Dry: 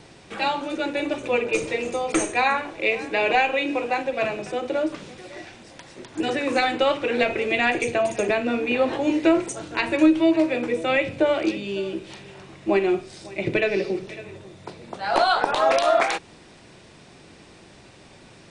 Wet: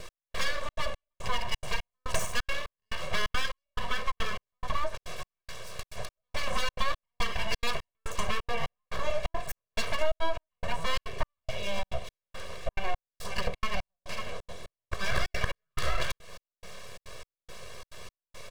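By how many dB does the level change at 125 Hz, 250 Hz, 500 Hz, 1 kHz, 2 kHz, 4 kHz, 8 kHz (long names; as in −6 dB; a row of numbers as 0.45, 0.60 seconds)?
−0.5, −23.0, −15.0, −11.0, −9.5, −4.5, −5.0 decibels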